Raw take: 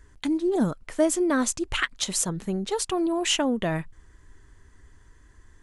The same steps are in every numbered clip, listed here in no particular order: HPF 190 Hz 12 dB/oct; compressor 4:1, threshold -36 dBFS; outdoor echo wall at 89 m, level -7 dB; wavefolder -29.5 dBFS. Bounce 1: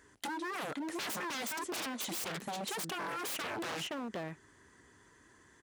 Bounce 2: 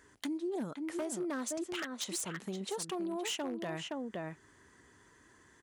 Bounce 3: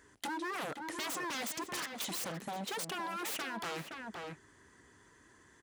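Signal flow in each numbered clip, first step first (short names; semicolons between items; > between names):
outdoor echo > wavefolder > HPF > compressor; outdoor echo > compressor > wavefolder > HPF; wavefolder > outdoor echo > compressor > HPF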